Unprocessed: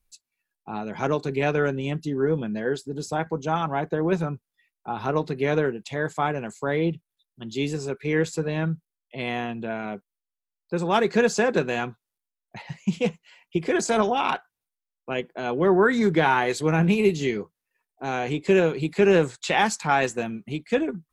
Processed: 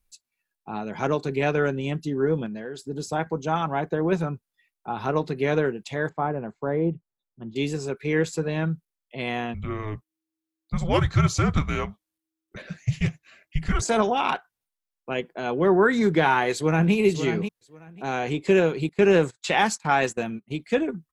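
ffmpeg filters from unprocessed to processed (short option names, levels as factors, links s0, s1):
-filter_complex "[0:a]asettb=1/sr,asplit=3[s0][s1][s2];[s0]atrim=end=2.464[s3];[s1]atrim=start=2.46:end=2.87,asetpts=PTS-STARTPTS,afade=t=in:d=0.004:c=qsin,afade=t=out:st=0.406:d=0.004:c=qsin,acompressor=threshold=0.0282:ratio=6:attack=3.2:release=140:knee=1:detection=peak[s4];[s2]atrim=start=2.866[s5];[s3][s4]acrossfade=d=0.004:c1=hsin:c2=qsin[s6];[s6][s5]acrossfade=d=0.004:c1=qsin:c2=hsin,asettb=1/sr,asplit=3[s7][s8][s9];[s7]atrim=end=6.094[s10];[s8]atrim=start=6.09:end=7.56,asetpts=PTS-STARTPTS,afade=t=in:d=0.004:c=qsin,afade=t=out:st=1.466:d=0.004:c=qsin,lowpass=1100[s11];[s9]atrim=start=7.556[s12];[s10][s11]acrossfade=d=0.004:c1=hsin:c2=qsin[s13];[s13][s12]acrossfade=d=0.004:c1=qsin:c2=hsin,asettb=1/sr,asplit=3[s14][s15][s16];[s14]atrim=end=9.544[s17];[s15]atrim=start=9.54:end=13.82,asetpts=PTS-STARTPTS,afade=t=in:d=0.004:c=qsin,afade=t=out:st=4.276:d=0.004:c=qsin,afreqshift=-320[s18];[s16]atrim=start=13.816[s19];[s17][s18]acrossfade=d=0.004:c1=hsin:c2=qsin[s20];[s20][s19]acrossfade=d=0.004:c1=qsin:c2=hsin,asplit=2[s21][s22];[s22]afade=t=in:st=16.53:d=0.01,afade=t=out:st=16.94:d=0.01,aecho=0:1:540|1080:0.354813|0.053222[s23];[s21][s23]amix=inputs=2:normalize=0,asettb=1/sr,asplit=3[s24][s25][s26];[s24]atrim=end=18.894[s27];[s25]atrim=start=18.89:end=20.59,asetpts=PTS-STARTPTS,afade=t=in:d=0.004:c=qsin,afade=t=out:st=1.696:d=0.004:c=qsin,agate=range=0.126:threshold=0.0158:ratio=16:release=100:detection=peak[s28];[s26]atrim=start=20.586[s29];[s27][s28]acrossfade=d=0.004:c1=hsin:c2=qsin[s30];[s30][s29]acrossfade=d=0.004:c1=qsin:c2=hsin"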